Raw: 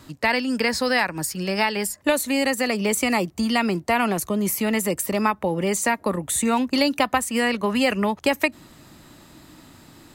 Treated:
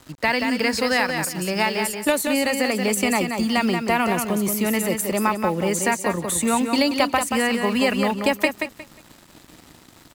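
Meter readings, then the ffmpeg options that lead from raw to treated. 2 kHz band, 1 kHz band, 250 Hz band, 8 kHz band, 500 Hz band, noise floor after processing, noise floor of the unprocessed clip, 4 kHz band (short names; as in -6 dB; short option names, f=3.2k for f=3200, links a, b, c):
+1.0 dB, +1.0 dB, +1.0 dB, +1.0 dB, +1.0 dB, -50 dBFS, -51 dBFS, +1.0 dB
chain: -af "acrusher=bits=6:mix=0:aa=0.5,aecho=1:1:180|360|540:0.501|0.11|0.0243"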